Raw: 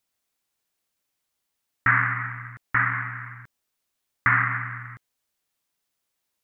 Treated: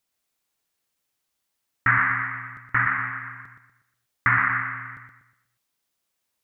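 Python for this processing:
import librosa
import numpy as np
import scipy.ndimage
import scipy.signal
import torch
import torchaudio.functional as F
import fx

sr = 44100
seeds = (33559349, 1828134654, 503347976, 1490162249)

y = fx.echo_feedback(x, sr, ms=121, feedback_pct=39, wet_db=-6)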